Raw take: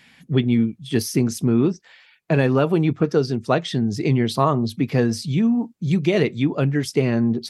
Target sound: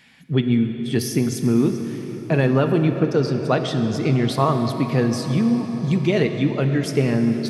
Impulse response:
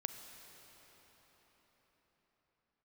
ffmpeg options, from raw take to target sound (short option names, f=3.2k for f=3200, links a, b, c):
-filter_complex "[1:a]atrim=start_sample=2205[a];[0:a][a]afir=irnorm=-1:irlink=0,volume=1dB"